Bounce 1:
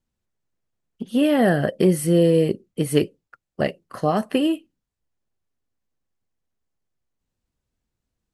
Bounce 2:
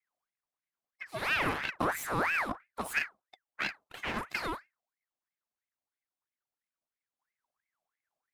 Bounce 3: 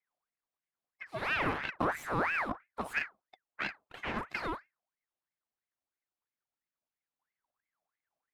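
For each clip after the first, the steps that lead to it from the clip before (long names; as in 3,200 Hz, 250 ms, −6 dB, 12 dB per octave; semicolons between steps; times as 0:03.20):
lower of the sound and its delayed copy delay 2.1 ms; ring modulator whose carrier an LFO sweeps 1,400 Hz, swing 55%, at 3 Hz; level −6.5 dB
low-pass filter 2,400 Hz 6 dB per octave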